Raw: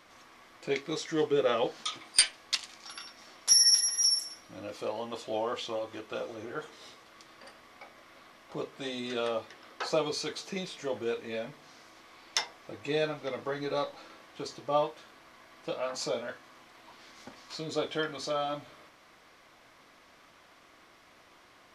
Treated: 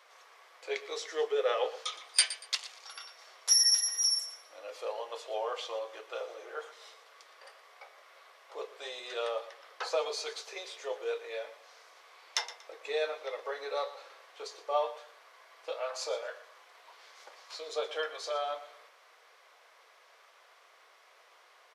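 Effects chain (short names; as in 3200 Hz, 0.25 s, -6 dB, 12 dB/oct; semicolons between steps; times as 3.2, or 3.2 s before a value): elliptic high-pass 440 Hz, stop band 60 dB; on a send: feedback echo 0.118 s, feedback 27%, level -15 dB; on the sum: gain -1.5 dB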